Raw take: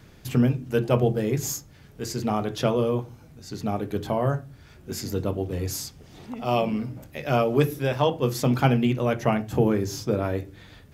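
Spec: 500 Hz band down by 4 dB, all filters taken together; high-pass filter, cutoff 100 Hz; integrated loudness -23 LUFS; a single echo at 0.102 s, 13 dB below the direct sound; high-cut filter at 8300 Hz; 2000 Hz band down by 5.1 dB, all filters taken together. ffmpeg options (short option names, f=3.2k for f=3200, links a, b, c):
-af "highpass=100,lowpass=8.3k,equalizer=f=500:t=o:g=-4.5,equalizer=f=2k:t=o:g=-7,aecho=1:1:102:0.224,volume=4.5dB"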